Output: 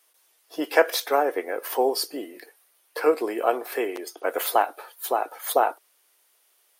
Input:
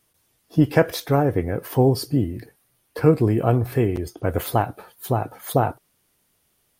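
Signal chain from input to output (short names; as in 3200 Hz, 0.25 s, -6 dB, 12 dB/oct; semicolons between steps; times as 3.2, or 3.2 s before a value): Bessel high-pass 610 Hz, order 6; gain +3.5 dB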